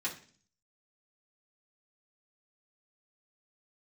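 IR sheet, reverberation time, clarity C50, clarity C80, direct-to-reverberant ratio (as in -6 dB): 0.45 s, 11.0 dB, 15.5 dB, -7.5 dB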